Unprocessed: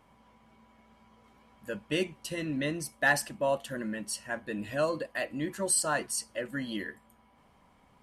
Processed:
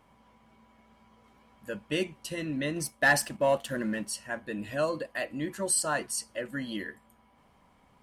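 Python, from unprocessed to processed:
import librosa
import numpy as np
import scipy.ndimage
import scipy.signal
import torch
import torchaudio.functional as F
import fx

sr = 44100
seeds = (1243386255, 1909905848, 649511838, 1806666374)

y = fx.leveller(x, sr, passes=1, at=(2.76, 4.08))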